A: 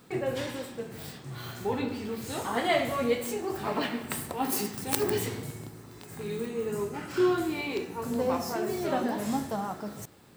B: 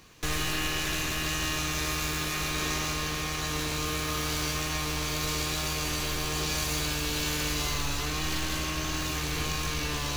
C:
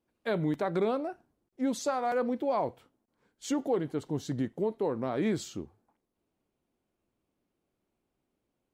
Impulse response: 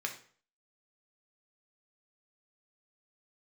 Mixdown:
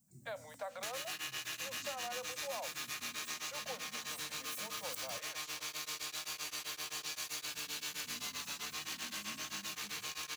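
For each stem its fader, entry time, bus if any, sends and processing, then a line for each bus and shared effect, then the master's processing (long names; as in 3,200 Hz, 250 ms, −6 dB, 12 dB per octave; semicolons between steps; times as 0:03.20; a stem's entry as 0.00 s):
−9.5 dB, 0.00 s, muted 0:05.19–0:07.54, no send, elliptic band-stop filter 200–6,300 Hz; low-shelf EQ 220 Hz −10.5 dB
−1.5 dB, 0.60 s, no send, high-pass filter 1,500 Hz 6 dB per octave; tremolo along a rectified sine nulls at 7.7 Hz
−7.0 dB, 0.00 s, no send, Butterworth high-pass 500 Hz 96 dB per octave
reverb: not used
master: downward compressor 3 to 1, threshold −40 dBFS, peak gain reduction 8 dB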